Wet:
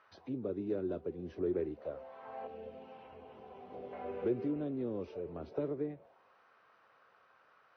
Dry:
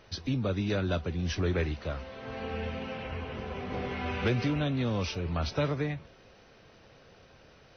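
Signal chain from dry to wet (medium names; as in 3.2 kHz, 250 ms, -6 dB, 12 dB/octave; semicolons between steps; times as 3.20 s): 2.47–3.93 s: high-order bell 1.1 kHz -9 dB 2.3 oct; auto-wah 370–1300 Hz, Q 3, down, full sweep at -27.5 dBFS; trim +1 dB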